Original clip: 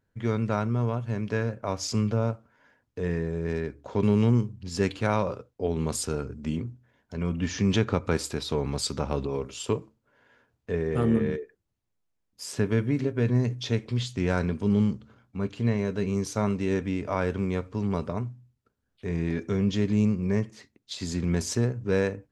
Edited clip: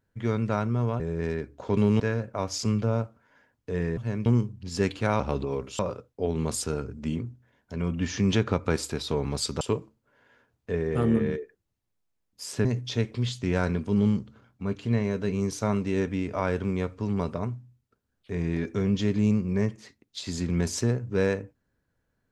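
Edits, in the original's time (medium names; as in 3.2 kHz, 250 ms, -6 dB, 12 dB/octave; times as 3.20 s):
1.00–1.29 s: swap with 3.26–4.26 s
9.02–9.61 s: move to 5.20 s
12.65–13.39 s: delete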